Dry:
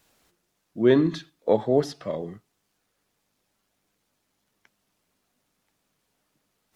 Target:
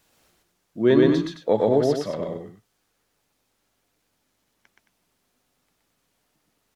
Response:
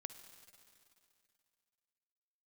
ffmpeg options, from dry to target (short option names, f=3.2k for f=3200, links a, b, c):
-af "aecho=1:1:122.4|218.7:0.891|0.355"